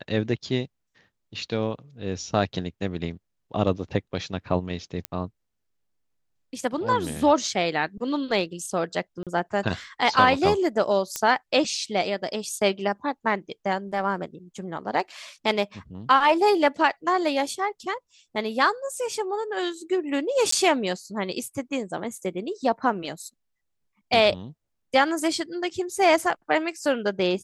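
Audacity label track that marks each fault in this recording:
5.050000	5.050000	pop -12 dBFS
9.230000	9.270000	dropout 37 ms
11.160000	11.160000	pop -10 dBFS
20.510000	20.520000	dropout 14 ms

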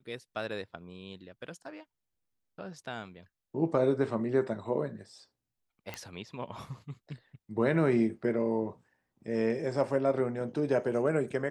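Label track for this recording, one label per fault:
5.940000	5.940000	pop -21 dBFS

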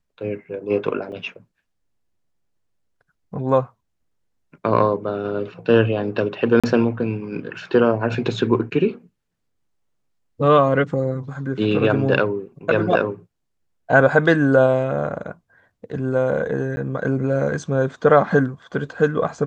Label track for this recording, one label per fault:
1.120000	1.120000	dropout 2.3 ms
6.600000	6.640000	dropout 36 ms
16.760000	16.770000	dropout 10 ms

